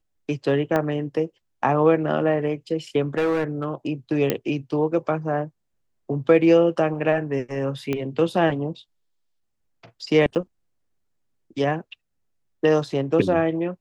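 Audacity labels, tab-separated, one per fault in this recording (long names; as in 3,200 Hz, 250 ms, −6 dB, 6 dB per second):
0.760000	0.760000	click −11 dBFS
3.170000	3.650000	clipping −17.5 dBFS
4.300000	4.300000	click −7 dBFS
7.930000	7.930000	click −13 dBFS
10.350000	10.360000	drop-out 8.2 ms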